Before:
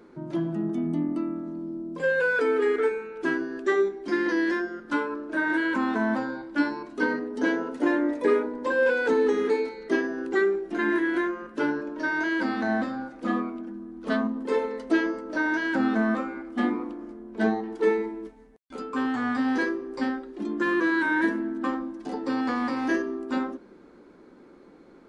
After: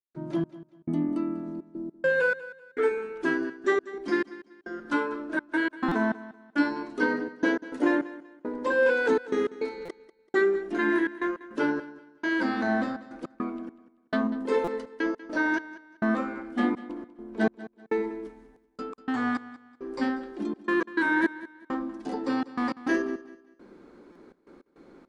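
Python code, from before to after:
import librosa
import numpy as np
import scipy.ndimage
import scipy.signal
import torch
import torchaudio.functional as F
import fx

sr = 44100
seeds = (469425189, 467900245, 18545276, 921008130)

p1 = fx.step_gate(x, sr, bpm=103, pattern='.xx...xxxxx.x', floor_db=-60.0, edge_ms=4.5)
p2 = p1 + fx.echo_feedback(p1, sr, ms=192, feedback_pct=29, wet_db=-17.0, dry=0)
y = fx.buffer_glitch(p2, sr, at_s=(5.88, 9.85, 14.64, 24.12), block=256, repeats=5)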